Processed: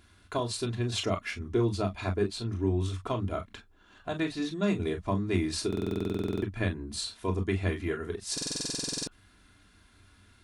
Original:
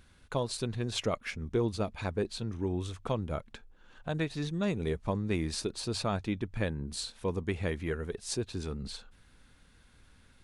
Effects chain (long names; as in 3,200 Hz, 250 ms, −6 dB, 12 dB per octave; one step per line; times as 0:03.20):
high-pass filter 85 Hz 6 dB per octave
convolution reverb, pre-delay 3 ms, DRR 1 dB
buffer that repeats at 0:05.68/0:08.33, samples 2,048, times 15